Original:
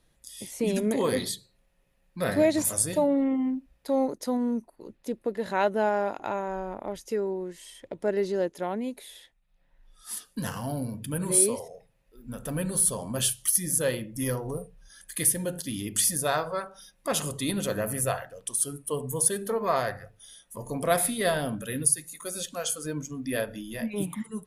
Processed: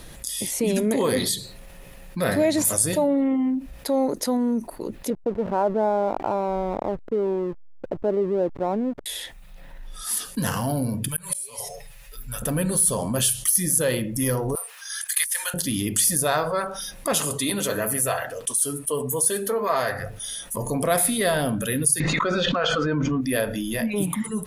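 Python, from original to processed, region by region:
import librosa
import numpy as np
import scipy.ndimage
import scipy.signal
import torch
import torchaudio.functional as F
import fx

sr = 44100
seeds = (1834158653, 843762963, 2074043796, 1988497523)

y = fx.chain(x, sr, fx.lowpass(hz=1100.0, slope=24),
    fx.backlash(play_db=-41.5), at=(5.1, 9.06))
y = fx.chain(y, sr, fx.tone_stack(knobs='10-0-10'),
    fx.comb(ms=7.0, depth=0.85),
    fx.gate_flip(shuts_db=-18.0, range_db=-31), at=(11.08, 12.42))
y = fx.chain(y, sr, fx.highpass(hz=1100.0, slope=24),
    fx.over_compress(threshold_db=-31.0, ratio=-0.5), at=(14.55, 15.54))
y = fx.chain(y, sr, fx.low_shelf(hz=200.0, db=-10.0),
    fx.notch_comb(f0_hz=180.0), at=(17.18, 19.99))
y = fx.chain(y, sr, fx.bessel_lowpass(hz=2600.0, order=6),
    fx.peak_eq(hz=1300.0, db=6.5, octaves=0.99),
    fx.env_flatten(amount_pct=100), at=(22.0, 23.21))
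y = fx.high_shelf(y, sr, hz=11000.0, db=5.0)
y = fx.env_flatten(y, sr, amount_pct=50)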